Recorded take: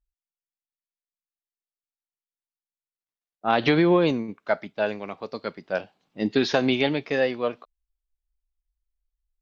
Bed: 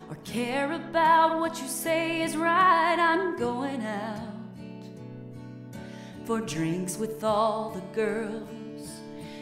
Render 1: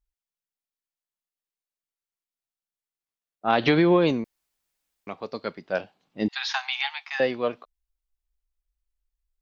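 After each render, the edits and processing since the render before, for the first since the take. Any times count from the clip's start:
0:04.24–0:05.07: fill with room tone
0:06.28–0:07.20: Butterworth high-pass 760 Hz 96 dB per octave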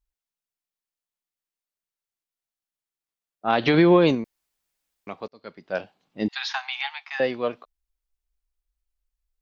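0:03.74–0:04.15: clip gain +3 dB
0:05.28–0:05.81: fade in
0:06.48–0:07.23: high-shelf EQ 3,800 Hz → 5,400 Hz −7.5 dB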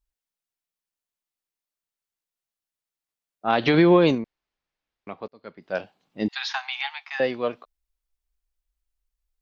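0:04.18–0:05.62: high-frequency loss of the air 190 metres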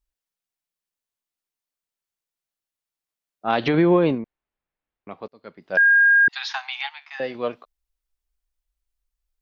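0:03.68–0:05.11: high-frequency loss of the air 370 metres
0:05.77–0:06.28: beep over 1,620 Hz −11.5 dBFS
0:06.89–0:07.35: tuned comb filter 71 Hz, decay 0.44 s, mix 50%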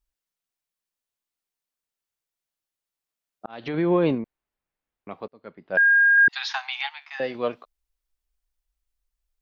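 0:03.46–0:04.19: fade in linear
0:05.25–0:06.18: high-frequency loss of the air 260 metres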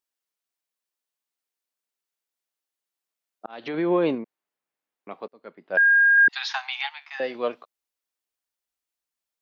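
high-pass filter 250 Hz 12 dB per octave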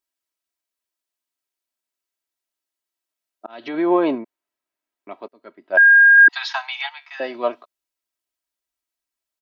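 dynamic equaliser 840 Hz, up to +8 dB, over −37 dBFS, Q 1.1
comb filter 3.1 ms, depth 61%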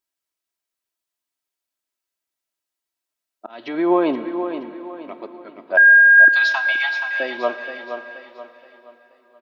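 repeating echo 475 ms, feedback 38%, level −9 dB
dense smooth reverb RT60 4.2 s, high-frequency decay 0.85×, pre-delay 0 ms, DRR 12 dB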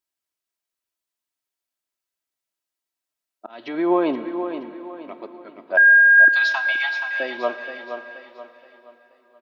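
level −2 dB

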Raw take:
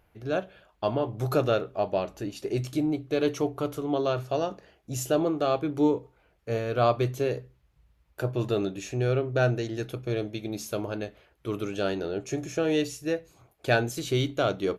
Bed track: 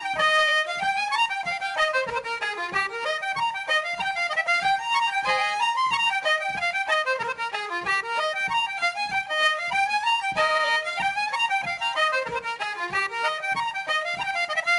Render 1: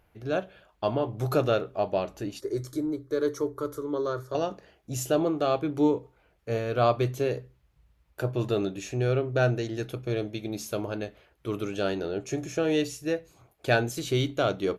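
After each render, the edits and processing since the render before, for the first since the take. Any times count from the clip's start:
0:02.40–0:04.35: phaser with its sweep stopped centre 730 Hz, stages 6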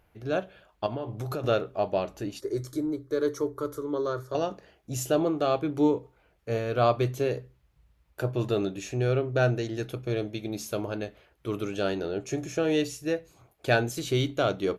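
0:00.86–0:01.44: downward compressor 5 to 1, threshold −29 dBFS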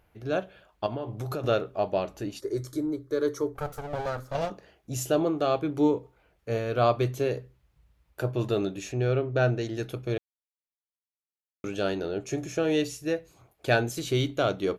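0:03.55–0:04.50: lower of the sound and its delayed copy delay 1.5 ms
0:08.92–0:09.61: high-frequency loss of the air 68 metres
0:10.18–0:11.64: silence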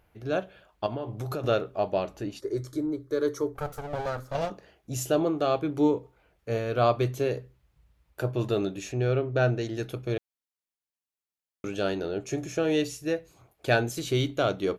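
0:02.16–0:03.00: high-shelf EQ 5,900 Hz −6 dB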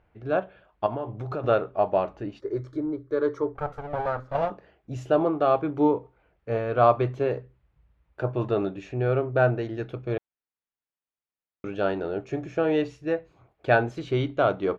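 low-pass filter 2,400 Hz 12 dB per octave
dynamic equaliser 940 Hz, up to +7 dB, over −39 dBFS, Q 0.97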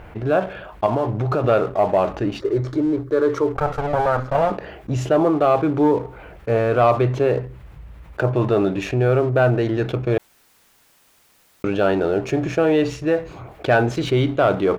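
leveller curve on the samples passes 1
envelope flattener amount 50%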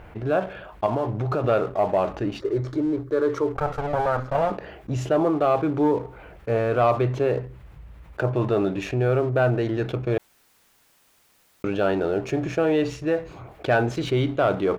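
level −4 dB

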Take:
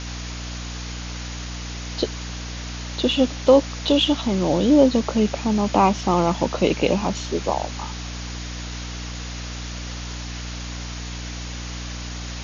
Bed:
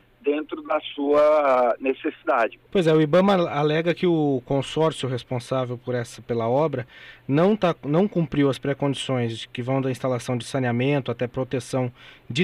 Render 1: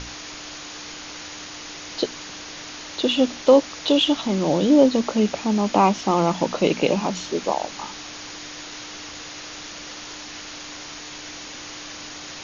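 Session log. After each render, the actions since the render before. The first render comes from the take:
mains-hum notches 60/120/180/240 Hz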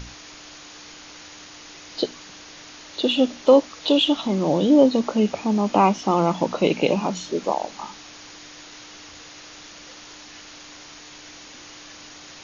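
noise reduction from a noise print 6 dB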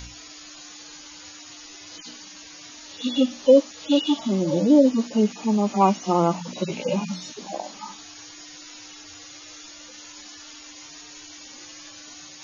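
harmonic-percussive split with one part muted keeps harmonic
high-shelf EQ 5,100 Hz +10.5 dB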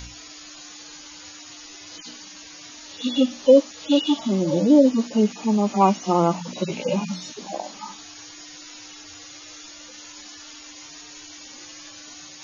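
level +1 dB

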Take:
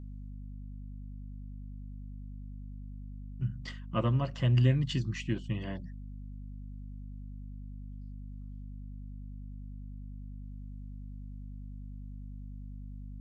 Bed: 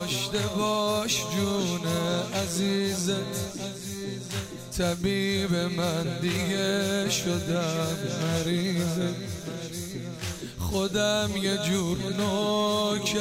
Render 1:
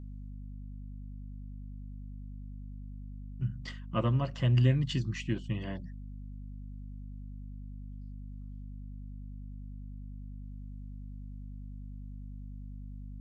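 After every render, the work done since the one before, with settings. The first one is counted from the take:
no processing that can be heard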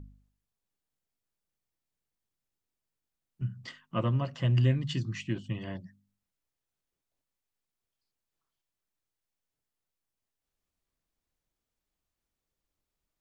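hum removal 50 Hz, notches 5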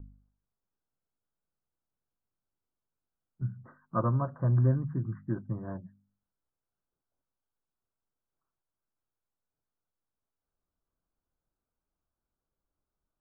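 dynamic equaliser 1,100 Hz, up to +5 dB, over −48 dBFS, Q 1.3
Butterworth low-pass 1,600 Hz 96 dB per octave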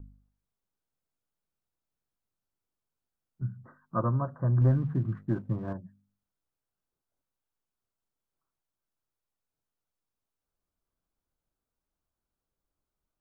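0:04.61–0:05.73: leveller curve on the samples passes 1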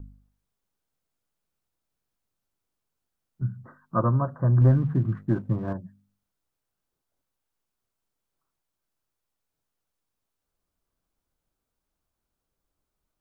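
level +5 dB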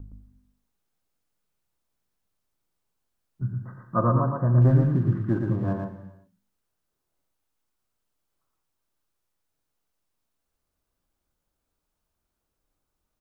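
single-tap delay 116 ms −4 dB
reverb whose tail is shaped and stops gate 420 ms falling, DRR 7.5 dB

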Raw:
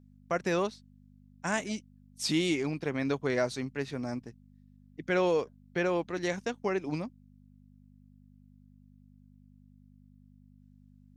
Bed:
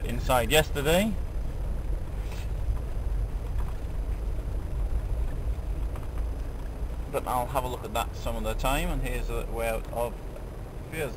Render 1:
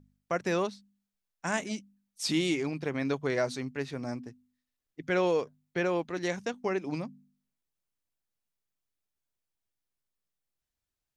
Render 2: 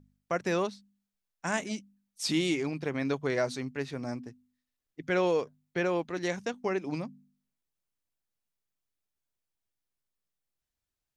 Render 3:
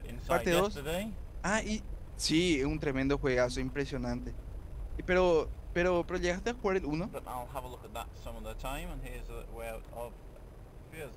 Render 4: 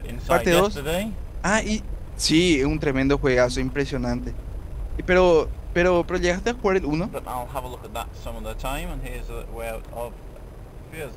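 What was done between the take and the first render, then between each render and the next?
hum removal 50 Hz, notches 5
no processing that can be heard
mix in bed −12 dB
level +10 dB

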